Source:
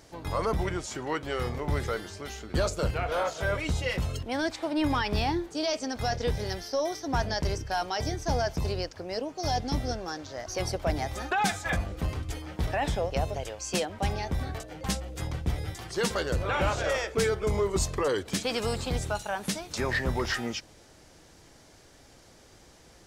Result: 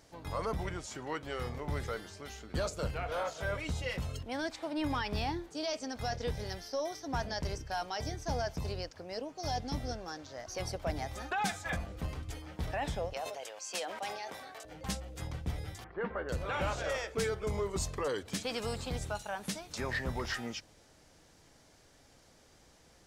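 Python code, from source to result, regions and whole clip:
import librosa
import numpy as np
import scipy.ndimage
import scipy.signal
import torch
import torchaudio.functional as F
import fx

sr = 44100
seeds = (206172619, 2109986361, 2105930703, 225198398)

y = fx.chain(x, sr, fx.highpass(hz=530.0, slope=12),
    fx.sustainer(db_per_s=43.0), at=(13.13, 14.65))
y = fx.chain(y, sr, fx.cheby2_lowpass(hz=7800.0, order=4, stop_db=70),
    fx.peak_eq(hz=120.0, db=-12.0, octaves=0.67), at=(15.84, 16.29))
y = fx.peak_eq(y, sr, hz=360.0, db=-4.0, octaves=0.26)
y = fx.hum_notches(y, sr, base_hz=50, count=2)
y = y * librosa.db_to_amplitude(-6.5)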